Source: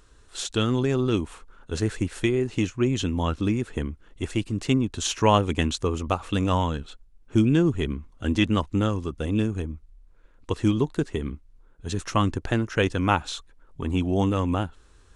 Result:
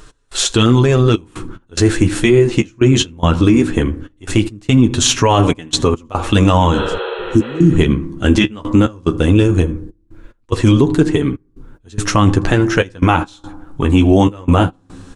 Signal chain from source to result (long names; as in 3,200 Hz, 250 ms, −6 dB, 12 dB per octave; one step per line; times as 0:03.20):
parametric band 66 Hz −7.5 dB 0.43 octaves
single-tap delay 81 ms −24 dB
on a send at −16 dB: convolution reverb RT60 1.0 s, pre-delay 3 ms
on the sum: gate pattern "x..xxxxxxxx..x" 144 BPM −24 dB
healed spectral selection 0:06.77–0:07.71, 360–4,500 Hz both
flanger 0.18 Hz, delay 6.5 ms, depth 8.2 ms, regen −23%
boost into a limiter +20 dB
level −1 dB